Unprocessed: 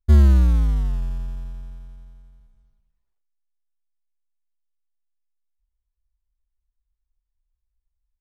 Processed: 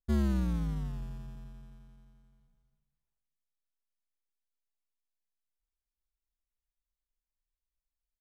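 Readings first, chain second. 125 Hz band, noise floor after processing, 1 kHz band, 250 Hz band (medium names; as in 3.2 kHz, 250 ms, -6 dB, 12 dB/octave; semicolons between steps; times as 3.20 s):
-16.0 dB, under -85 dBFS, -8.5 dB, -5.5 dB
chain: resonant low shelf 120 Hz -6.5 dB, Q 3; on a send: feedback delay 195 ms, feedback 52%, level -21 dB; on the sum: trim -8.5 dB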